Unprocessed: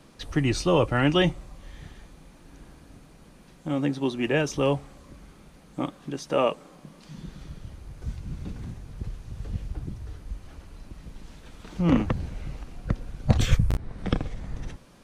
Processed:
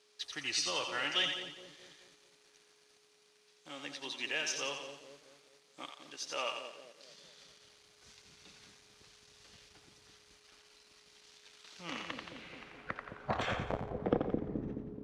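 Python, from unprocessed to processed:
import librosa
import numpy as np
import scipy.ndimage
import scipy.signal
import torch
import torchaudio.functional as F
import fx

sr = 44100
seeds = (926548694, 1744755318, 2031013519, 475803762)

y = fx.echo_split(x, sr, split_hz=590.0, low_ms=213, high_ms=87, feedback_pct=52, wet_db=-6)
y = fx.leveller(y, sr, passes=1)
y = fx.bass_treble(y, sr, bass_db=-3, treble_db=-4)
y = y + 10.0 ** (-46.0 / 20.0) * np.sin(2.0 * np.pi * 420.0 * np.arange(len(y)) / sr)
y = fx.filter_sweep_bandpass(y, sr, from_hz=5200.0, to_hz=270.0, start_s=11.95, end_s=14.67, q=1.3)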